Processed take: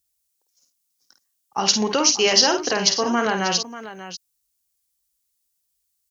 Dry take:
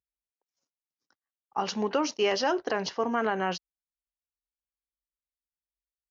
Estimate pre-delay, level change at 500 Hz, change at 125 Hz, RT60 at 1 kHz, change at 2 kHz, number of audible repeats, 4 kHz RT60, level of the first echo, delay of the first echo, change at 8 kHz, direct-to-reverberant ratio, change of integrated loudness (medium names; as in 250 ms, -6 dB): no reverb, +5.0 dB, +8.0 dB, no reverb, +8.5 dB, 2, no reverb, -7.0 dB, 51 ms, no reading, no reverb, +10.5 dB